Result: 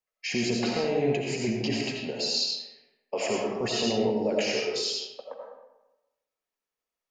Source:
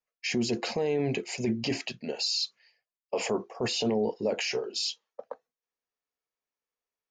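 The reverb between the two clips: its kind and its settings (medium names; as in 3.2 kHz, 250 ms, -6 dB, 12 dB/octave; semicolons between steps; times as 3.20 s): algorithmic reverb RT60 1 s, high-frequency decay 0.65×, pre-delay 45 ms, DRR -1.5 dB; trim -1 dB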